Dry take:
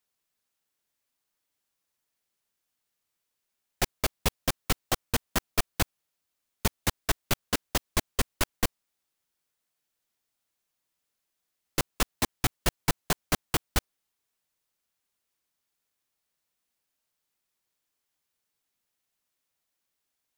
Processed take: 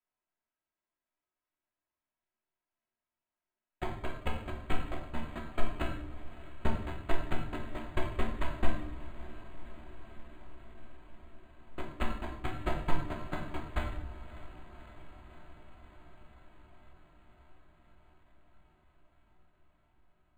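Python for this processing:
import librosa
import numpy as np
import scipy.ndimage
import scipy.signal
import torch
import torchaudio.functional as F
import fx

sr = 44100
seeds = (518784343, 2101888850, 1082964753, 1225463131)

p1 = fx.high_shelf(x, sr, hz=2300.0, db=-2.5)
p2 = p1 + 0.45 * np.pad(p1, (int(3.1 * sr / 1000.0), 0))[:len(p1)]
p3 = fx.level_steps(p2, sr, step_db=11)
p4 = fx.brickwall_lowpass(p3, sr, high_hz=4900.0)
p5 = fx.comb_fb(p4, sr, f0_hz=75.0, decay_s=0.2, harmonics='all', damping=0.0, mix_pct=80)
p6 = p5 + fx.echo_diffused(p5, sr, ms=596, feedback_pct=76, wet_db=-16.0, dry=0)
p7 = fx.room_shoebox(p6, sr, seeds[0], volume_m3=200.0, walls='mixed', distance_m=1.0)
p8 = np.interp(np.arange(len(p7)), np.arange(len(p7))[::8], p7[::8])
y = p8 * librosa.db_to_amplitude(1.0)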